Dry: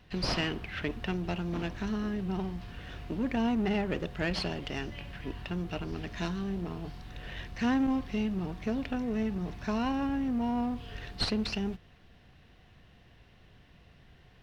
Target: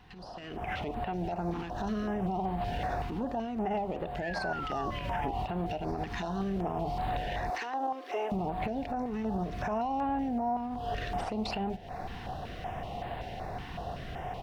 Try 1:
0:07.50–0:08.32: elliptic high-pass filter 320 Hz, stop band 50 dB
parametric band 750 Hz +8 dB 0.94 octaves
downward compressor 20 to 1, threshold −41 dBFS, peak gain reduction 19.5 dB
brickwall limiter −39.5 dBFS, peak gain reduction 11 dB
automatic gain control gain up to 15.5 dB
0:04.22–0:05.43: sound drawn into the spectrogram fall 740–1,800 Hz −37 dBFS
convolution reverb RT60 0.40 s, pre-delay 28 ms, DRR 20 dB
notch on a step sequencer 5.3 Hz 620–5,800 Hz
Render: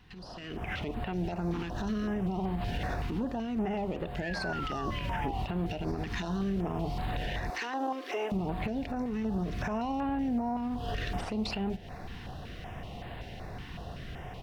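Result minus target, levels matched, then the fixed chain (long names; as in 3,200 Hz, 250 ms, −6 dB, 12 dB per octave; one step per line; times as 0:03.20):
1,000 Hz band −4.5 dB
0:07.50–0:08.32: elliptic high-pass filter 320 Hz, stop band 50 dB
parametric band 750 Hz +18 dB 0.94 octaves
downward compressor 20 to 1, threshold −41 dBFS, peak gain reduction 24.5 dB
brickwall limiter −39.5 dBFS, peak gain reduction 12 dB
automatic gain control gain up to 15.5 dB
0:04.22–0:05.43: sound drawn into the spectrogram fall 740–1,800 Hz −37 dBFS
convolution reverb RT60 0.40 s, pre-delay 28 ms, DRR 20 dB
notch on a step sequencer 5.3 Hz 620–5,800 Hz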